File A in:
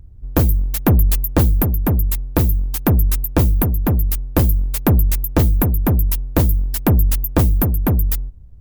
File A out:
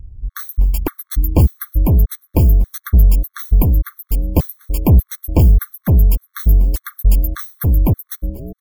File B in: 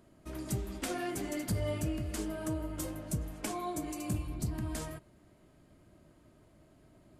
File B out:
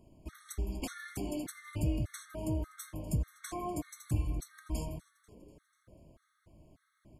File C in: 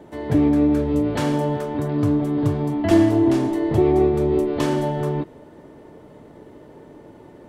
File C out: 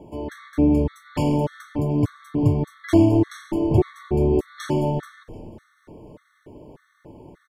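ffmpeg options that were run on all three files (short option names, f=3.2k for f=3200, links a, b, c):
-filter_complex "[0:a]lowshelf=f=120:g=9,asplit=2[a][b];[b]asplit=6[c][d][e][f][g][h];[c]adelay=245,afreqshift=-120,volume=-20.5dB[i];[d]adelay=490,afreqshift=-240,volume=-24.2dB[j];[e]adelay=735,afreqshift=-360,volume=-28dB[k];[f]adelay=980,afreqshift=-480,volume=-31.7dB[l];[g]adelay=1225,afreqshift=-600,volume=-35.5dB[m];[h]adelay=1470,afreqshift=-720,volume=-39.2dB[n];[i][j][k][l][m][n]amix=inputs=6:normalize=0[o];[a][o]amix=inputs=2:normalize=0,afftfilt=real='re*gt(sin(2*PI*1.7*pts/sr)*(1-2*mod(floor(b*sr/1024/1100),2)),0)':imag='im*gt(sin(2*PI*1.7*pts/sr)*(1-2*mod(floor(b*sr/1024/1100),2)),0)':win_size=1024:overlap=0.75,volume=-1dB"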